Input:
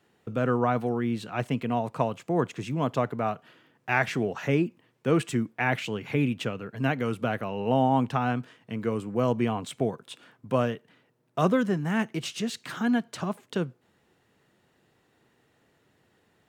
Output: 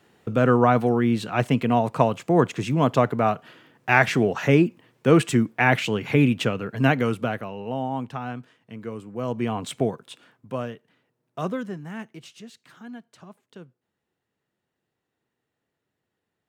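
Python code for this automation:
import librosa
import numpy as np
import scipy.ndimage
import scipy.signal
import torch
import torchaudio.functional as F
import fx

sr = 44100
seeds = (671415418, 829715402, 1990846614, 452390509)

y = fx.gain(x, sr, db=fx.line((6.96, 7.0), (7.72, -5.5), (9.15, -5.5), (9.71, 5.0), (10.57, -5.0), (11.47, -5.0), (12.73, -15.0)))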